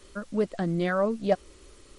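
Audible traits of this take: a quantiser's noise floor 10-bit, dither triangular; MP3

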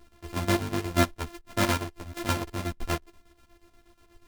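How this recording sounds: a buzz of ramps at a fixed pitch in blocks of 128 samples; chopped level 8.3 Hz, depth 65%, duty 60%; a shimmering, thickened sound

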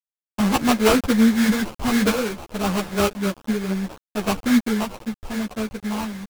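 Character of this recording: a quantiser's noise floor 6-bit, dither none; random-step tremolo 1.9 Hz; aliases and images of a low sample rate 1900 Hz, jitter 20%; a shimmering, thickened sound

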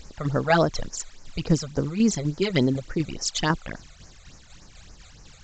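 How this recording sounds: a quantiser's noise floor 8-bit, dither triangular; tremolo saw down 4 Hz, depth 45%; phasing stages 12, 3.5 Hz, lowest notch 280–3500 Hz; µ-law

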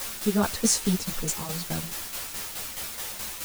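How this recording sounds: a quantiser's noise floor 6-bit, dither triangular; tremolo saw down 4.7 Hz, depth 60%; a shimmering, thickened sound

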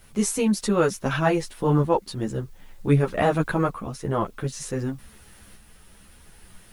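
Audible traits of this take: a quantiser's noise floor 10-bit, dither triangular; tremolo saw up 0.54 Hz, depth 40%; a shimmering, thickened sound

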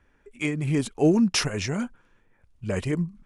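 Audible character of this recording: noise floor -64 dBFS; spectral tilt -5.0 dB/oct

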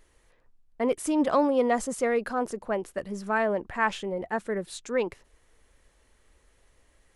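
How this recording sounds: noise floor -65 dBFS; spectral tilt -1.0 dB/oct

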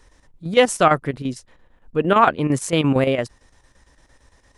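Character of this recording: chopped level 8.8 Hz, depth 60%, duty 75%

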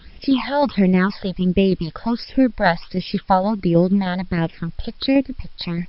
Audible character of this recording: phasing stages 8, 1.4 Hz, lowest notch 320–1300 Hz; tremolo saw down 6.4 Hz, depth 40%; a quantiser's noise floor 10-bit, dither triangular; MP3

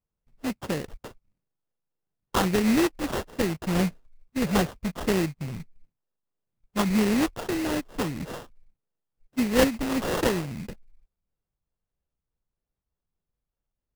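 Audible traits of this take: a buzz of ramps at a fixed pitch in blocks of 16 samples; phasing stages 6, 1.6 Hz, lowest notch 460–1500 Hz; aliases and images of a low sample rate 2300 Hz, jitter 20%

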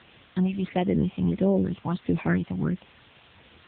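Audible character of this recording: phasing stages 6, 1.5 Hz, lowest notch 410–1400 Hz; a quantiser's noise floor 8-bit, dither triangular; AMR-NB

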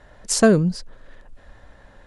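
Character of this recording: noise floor -51 dBFS; spectral tilt -5.0 dB/oct

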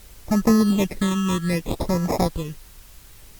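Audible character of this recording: aliases and images of a low sample rate 1500 Hz, jitter 0%; phasing stages 8, 0.61 Hz, lowest notch 610–3300 Hz; a quantiser's noise floor 8-bit, dither triangular; Opus

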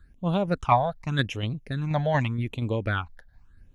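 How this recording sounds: tremolo saw down 4.2 Hz, depth 40%; phasing stages 8, 0.85 Hz, lowest notch 330–1700 Hz

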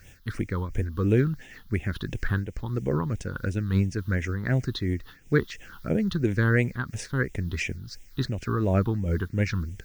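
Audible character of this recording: a quantiser's noise floor 10-bit, dither triangular; phasing stages 6, 2.9 Hz, lowest notch 600–1200 Hz; noise-modulated level

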